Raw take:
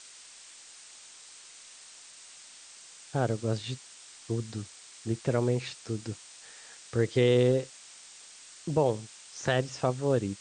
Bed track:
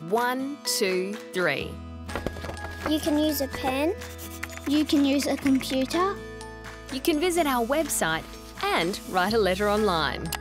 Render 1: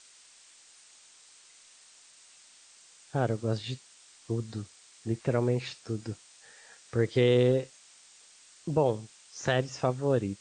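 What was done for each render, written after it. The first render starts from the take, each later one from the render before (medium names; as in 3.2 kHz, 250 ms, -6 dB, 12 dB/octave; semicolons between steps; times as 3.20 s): noise print and reduce 6 dB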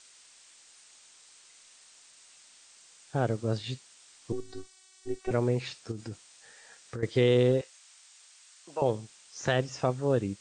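4.32–5.31 s: robot voice 378 Hz; 5.91–7.03 s: compression, threshold -33 dBFS; 7.61–8.82 s: high-pass 790 Hz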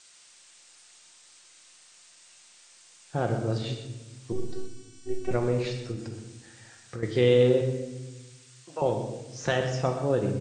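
delay 124 ms -11.5 dB; simulated room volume 590 m³, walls mixed, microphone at 0.88 m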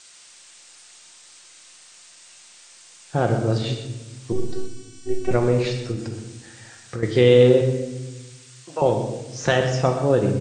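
trim +7 dB; peak limiter -3 dBFS, peak gain reduction 1.5 dB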